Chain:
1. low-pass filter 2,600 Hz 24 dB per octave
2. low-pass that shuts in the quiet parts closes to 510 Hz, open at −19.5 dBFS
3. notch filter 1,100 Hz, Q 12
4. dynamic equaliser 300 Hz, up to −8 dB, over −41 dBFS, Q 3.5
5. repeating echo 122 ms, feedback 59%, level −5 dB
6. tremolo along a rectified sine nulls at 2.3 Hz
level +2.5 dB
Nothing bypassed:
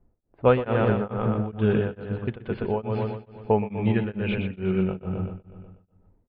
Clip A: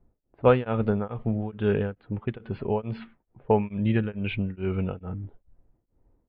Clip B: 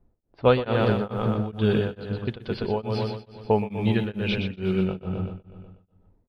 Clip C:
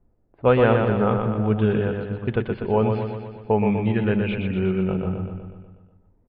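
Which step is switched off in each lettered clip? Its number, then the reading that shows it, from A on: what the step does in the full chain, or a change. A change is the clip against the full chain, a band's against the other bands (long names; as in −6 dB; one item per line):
5, change in momentary loudness spread +4 LU
1, 4 kHz band +8.5 dB
6, change in integrated loudness +3.5 LU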